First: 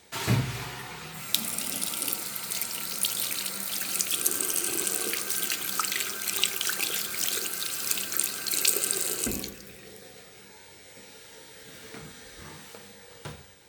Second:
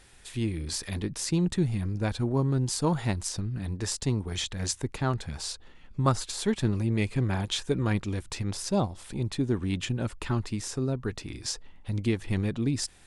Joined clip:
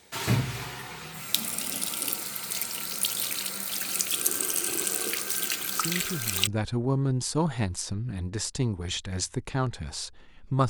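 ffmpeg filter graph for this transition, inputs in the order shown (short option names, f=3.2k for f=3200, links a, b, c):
-filter_complex "[1:a]asplit=2[a][b];[0:a]apad=whole_dur=10.69,atrim=end=10.69,atrim=end=6.472[c];[b]atrim=start=1.938:end=6.16[d];[a]atrim=start=1.23:end=1.94,asetpts=PTS-STARTPTS,volume=-8.5dB,afade=t=in:d=0.004:c=hsin,afade=t=out:st=0.706:d=0.004:c=hsin,adelay=5760[e];[c][d]acrossfade=d=0.004:c1=hsin:c2=hsin[f];[f][e]amix=inputs=2:normalize=0"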